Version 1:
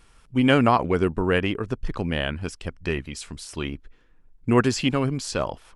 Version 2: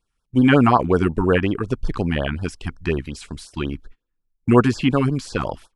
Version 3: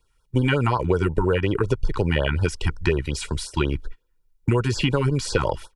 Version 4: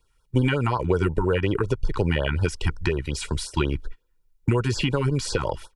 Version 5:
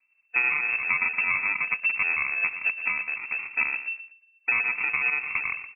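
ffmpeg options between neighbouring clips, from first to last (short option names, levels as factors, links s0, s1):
-filter_complex "[0:a]acrossover=split=2600[s0][s1];[s1]acompressor=threshold=0.00891:ratio=4:attack=1:release=60[s2];[s0][s2]amix=inputs=2:normalize=0,agate=range=0.0562:threshold=0.00708:ratio=16:detection=peak,afftfilt=real='re*(1-between(b*sr/1024,470*pow(2500/470,0.5+0.5*sin(2*PI*5.5*pts/sr))/1.41,470*pow(2500/470,0.5+0.5*sin(2*PI*5.5*pts/sr))*1.41))':imag='im*(1-between(b*sr/1024,470*pow(2500/470,0.5+0.5*sin(2*PI*5.5*pts/sr))/1.41,470*pow(2500/470,0.5+0.5*sin(2*PI*5.5*pts/sr))*1.41))':win_size=1024:overlap=0.75,volume=1.78"
-filter_complex "[0:a]acrossover=split=160|3000[s0][s1][s2];[s1]acompressor=threshold=0.141:ratio=6[s3];[s0][s3][s2]amix=inputs=3:normalize=0,aecho=1:1:2.1:0.59,acompressor=threshold=0.0708:ratio=6,volume=2"
-af "alimiter=limit=0.316:level=0:latency=1:release=416"
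-filter_complex "[0:a]asplit=2[s0][s1];[s1]aecho=0:1:118|236|354:0.266|0.0772|0.0224[s2];[s0][s2]amix=inputs=2:normalize=0,acrusher=samples=42:mix=1:aa=0.000001,lowpass=f=2300:t=q:w=0.5098,lowpass=f=2300:t=q:w=0.6013,lowpass=f=2300:t=q:w=0.9,lowpass=f=2300:t=q:w=2.563,afreqshift=-2700,volume=0.668"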